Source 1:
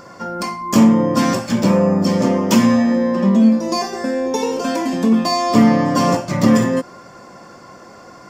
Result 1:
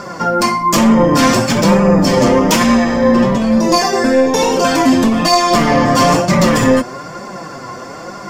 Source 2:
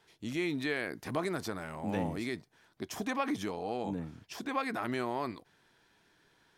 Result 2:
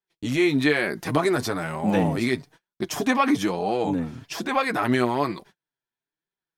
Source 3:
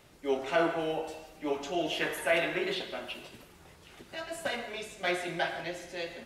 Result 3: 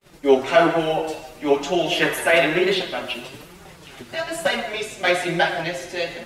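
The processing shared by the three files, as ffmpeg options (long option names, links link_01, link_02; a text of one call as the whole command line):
ffmpeg -i in.wav -af "apsyclip=18.5dB,flanger=delay=4.8:depth=3.7:regen=20:speed=1.1:shape=triangular,agate=range=-38dB:threshold=-43dB:ratio=16:detection=peak,volume=-3.5dB" out.wav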